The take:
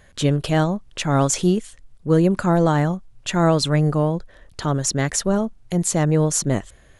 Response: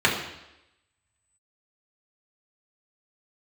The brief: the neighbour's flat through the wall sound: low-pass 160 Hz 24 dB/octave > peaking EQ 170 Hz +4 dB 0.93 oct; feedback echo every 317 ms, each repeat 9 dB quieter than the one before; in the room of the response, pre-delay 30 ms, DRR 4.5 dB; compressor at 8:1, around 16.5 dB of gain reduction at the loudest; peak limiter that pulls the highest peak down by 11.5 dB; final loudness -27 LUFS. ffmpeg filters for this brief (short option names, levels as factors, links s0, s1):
-filter_complex "[0:a]acompressor=threshold=0.0316:ratio=8,alimiter=level_in=1.19:limit=0.0631:level=0:latency=1,volume=0.841,aecho=1:1:317|634|951|1268:0.355|0.124|0.0435|0.0152,asplit=2[s0][s1];[1:a]atrim=start_sample=2205,adelay=30[s2];[s1][s2]afir=irnorm=-1:irlink=0,volume=0.0708[s3];[s0][s3]amix=inputs=2:normalize=0,lowpass=f=160:w=0.5412,lowpass=f=160:w=1.3066,equalizer=f=170:t=o:w=0.93:g=4,volume=3.35"